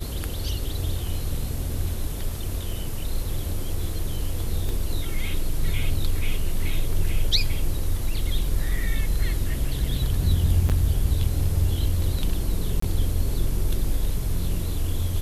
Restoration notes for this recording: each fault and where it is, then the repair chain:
4.69 pop
10.69–10.7 gap 7.9 ms
12.8–12.82 gap 24 ms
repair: de-click; interpolate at 10.69, 7.9 ms; interpolate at 12.8, 24 ms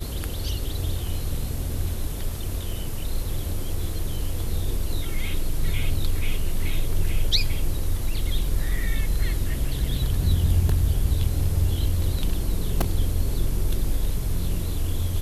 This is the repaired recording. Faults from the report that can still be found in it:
none

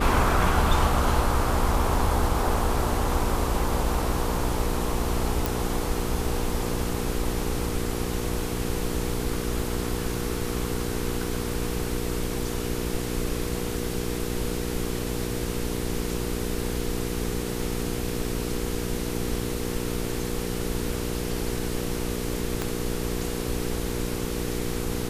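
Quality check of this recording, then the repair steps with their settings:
hum 60 Hz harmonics 8 -31 dBFS
5.46 pop
22.62 pop -12 dBFS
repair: de-click; de-hum 60 Hz, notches 8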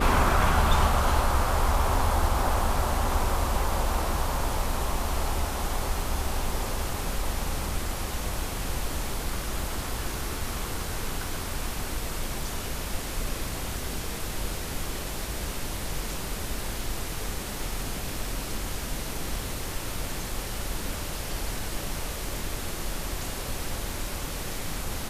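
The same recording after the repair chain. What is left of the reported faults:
22.62 pop

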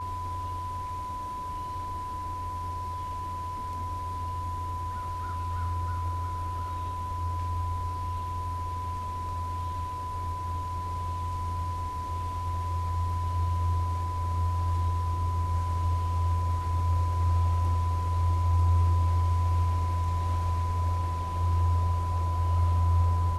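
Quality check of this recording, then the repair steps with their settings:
tone 1000 Hz -33 dBFS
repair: notch 1000 Hz, Q 30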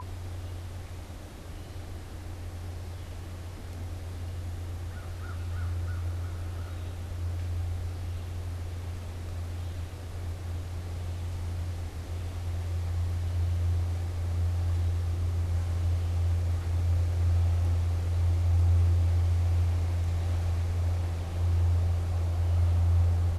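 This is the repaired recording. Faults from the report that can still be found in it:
none

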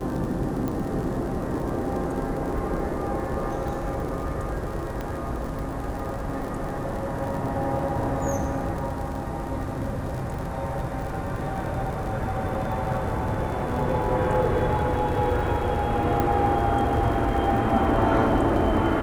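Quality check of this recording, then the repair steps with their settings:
crackle 56/s -32 dBFS
0.68 pop -17 dBFS
5.01 pop -18 dBFS
16.2 pop -12 dBFS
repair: de-click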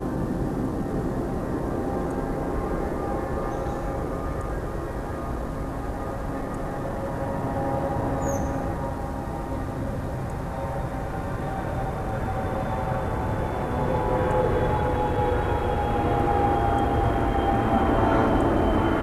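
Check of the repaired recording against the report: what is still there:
5.01 pop
16.2 pop

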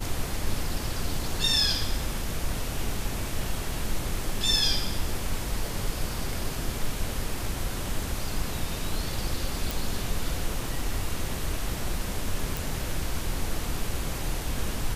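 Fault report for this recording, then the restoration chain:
9.71 pop
12.57 pop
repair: de-click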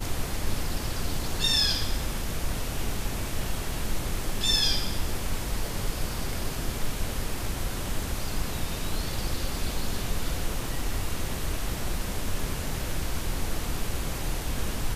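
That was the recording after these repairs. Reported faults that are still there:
none

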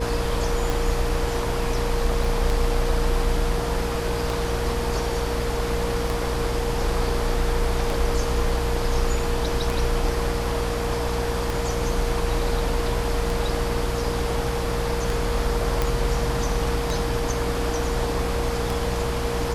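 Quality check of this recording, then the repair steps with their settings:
hum 60 Hz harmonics 6 -29 dBFS
tick 33 1/3 rpm
tone 470 Hz -28 dBFS
2.24 gap 3.3 ms
15.82 pop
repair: de-click; de-hum 60 Hz, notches 6; notch 470 Hz, Q 30; interpolate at 2.24, 3.3 ms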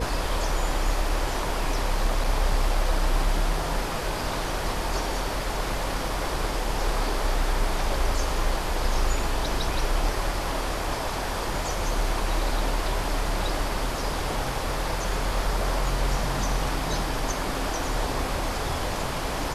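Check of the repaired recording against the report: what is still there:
none

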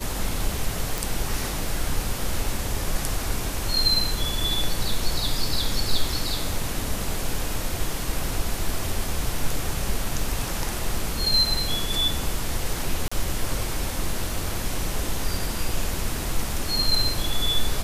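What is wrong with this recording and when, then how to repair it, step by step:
0.98 pop
13.08–13.12 gap 35 ms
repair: de-click; interpolate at 13.08, 35 ms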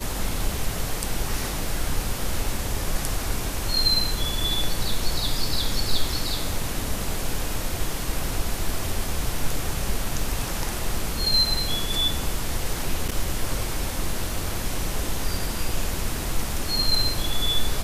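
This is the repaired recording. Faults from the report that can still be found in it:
none

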